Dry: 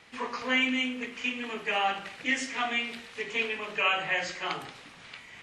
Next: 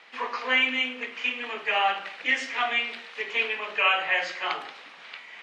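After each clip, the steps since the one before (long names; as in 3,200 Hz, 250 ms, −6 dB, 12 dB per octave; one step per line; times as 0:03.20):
Butterworth high-pass 170 Hz
three-way crossover with the lows and the highs turned down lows −14 dB, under 440 Hz, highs −18 dB, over 5,000 Hz
level +4.5 dB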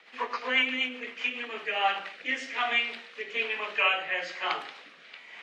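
rotating-speaker cabinet horn 8 Hz, later 1.1 Hz, at 0:01.05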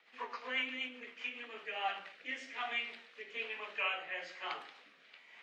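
flanger 1.1 Hz, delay 6.7 ms, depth 8.8 ms, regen +77%
level −6.5 dB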